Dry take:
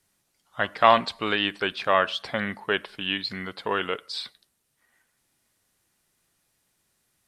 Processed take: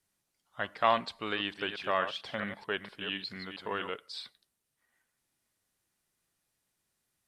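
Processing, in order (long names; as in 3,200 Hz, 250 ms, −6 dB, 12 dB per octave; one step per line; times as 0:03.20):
0:01.09–0:03.90: delay that plays each chunk backwards 225 ms, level −8.5 dB
level −9 dB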